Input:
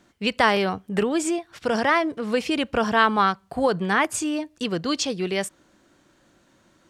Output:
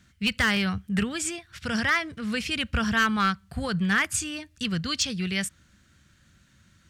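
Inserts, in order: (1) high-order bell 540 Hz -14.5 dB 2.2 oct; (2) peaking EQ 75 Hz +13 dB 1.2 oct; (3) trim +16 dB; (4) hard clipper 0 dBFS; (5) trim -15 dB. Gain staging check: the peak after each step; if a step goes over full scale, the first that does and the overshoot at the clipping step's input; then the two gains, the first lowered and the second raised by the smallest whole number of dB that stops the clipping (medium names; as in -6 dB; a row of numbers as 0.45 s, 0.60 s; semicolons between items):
-8.5 dBFS, -8.0 dBFS, +8.0 dBFS, 0.0 dBFS, -15.0 dBFS; step 3, 8.0 dB; step 3 +8 dB, step 5 -7 dB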